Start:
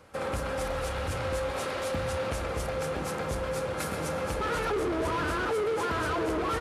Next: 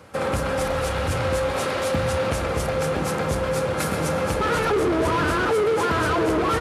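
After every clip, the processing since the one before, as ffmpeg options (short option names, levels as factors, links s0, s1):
-af "highpass=59,equalizer=f=150:t=o:w=1.6:g=3,volume=2.37"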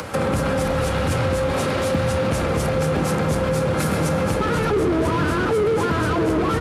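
-filter_complex "[0:a]acrossover=split=110|290[s0][s1][s2];[s0]acompressor=threshold=0.00891:ratio=4[s3];[s1]acompressor=threshold=0.0251:ratio=4[s4];[s2]acompressor=threshold=0.02:ratio=4[s5];[s3][s4][s5]amix=inputs=3:normalize=0,asplit=2[s6][s7];[s7]alimiter=level_in=1.68:limit=0.0631:level=0:latency=1,volume=0.596,volume=1.12[s8];[s6][s8]amix=inputs=2:normalize=0,acompressor=mode=upward:threshold=0.0224:ratio=2.5,volume=2"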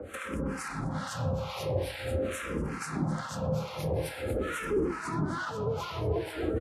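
-filter_complex "[0:a]acrossover=split=900[s0][s1];[s0]aeval=exprs='val(0)*(1-1/2+1/2*cos(2*PI*2.3*n/s))':c=same[s2];[s1]aeval=exprs='val(0)*(1-1/2-1/2*cos(2*PI*2.3*n/s))':c=same[s3];[s2][s3]amix=inputs=2:normalize=0,aecho=1:1:496:0.473,asplit=2[s4][s5];[s5]afreqshift=-0.46[s6];[s4][s6]amix=inputs=2:normalize=1,volume=0.562"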